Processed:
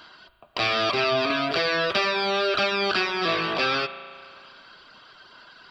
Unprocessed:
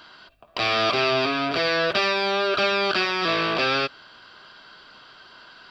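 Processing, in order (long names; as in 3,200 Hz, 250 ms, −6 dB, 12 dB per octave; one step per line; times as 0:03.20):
reverb reduction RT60 0.75 s
spring reverb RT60 2.2 s, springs 35 ms, chirp 60 ms, DRR 11 dB
0:01.30–0:03.09: multiband upward and downward compressor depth 70%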